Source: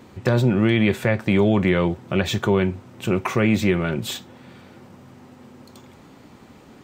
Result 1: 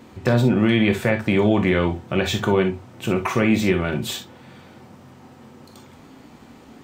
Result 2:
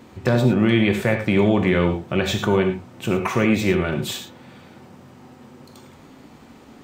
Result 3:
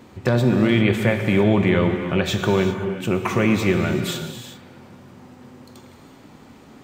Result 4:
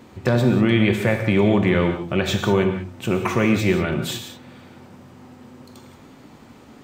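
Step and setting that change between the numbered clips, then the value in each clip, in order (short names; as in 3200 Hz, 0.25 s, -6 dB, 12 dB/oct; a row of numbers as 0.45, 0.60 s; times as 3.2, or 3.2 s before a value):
non-linear reverb, gate: 80, 130, 420, 210 ms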